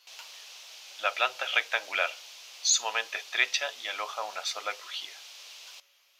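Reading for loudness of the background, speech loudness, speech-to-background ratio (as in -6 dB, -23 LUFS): -45.0 LUFS, -29.5 LUFS, 15.5 dB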